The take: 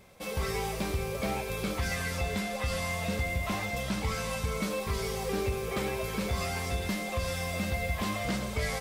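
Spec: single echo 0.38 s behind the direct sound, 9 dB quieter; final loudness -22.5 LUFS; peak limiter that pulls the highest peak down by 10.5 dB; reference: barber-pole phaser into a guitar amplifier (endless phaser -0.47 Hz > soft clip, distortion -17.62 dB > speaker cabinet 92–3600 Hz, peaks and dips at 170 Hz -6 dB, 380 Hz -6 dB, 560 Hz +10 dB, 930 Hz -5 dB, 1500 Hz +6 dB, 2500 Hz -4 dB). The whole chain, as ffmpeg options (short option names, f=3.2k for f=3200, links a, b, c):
-filter_complex "[0:a]alimiter=level_in=6.5dB:limit=-24dB:level=0:latency=1,volume=-6.5dB,aecho=1:1:380:0.355,asplit=2[a][b];[b]afreqshift=-0.47[c];[a][c]amix=inputs=2:normalize=1,asoftclip=threshold=-35.5dB,highpass=92,equalizer=f=170:t=q:w=4:g=-6,equalizer=f=380:t=q:w=4:g=-6,equalizer=f=560:t=q:w=4:g=10,equalizer=f=930:t=q:w=4:g=-5,equalizer=f=1.5k:t=q:w=4:g=6,equalizer=f=2.5k:t=q:w=4:g=-4,lowpass=f=3.6k:w=0.5412,lowpass=f=3.6k:w=1.3066,volume=20dB"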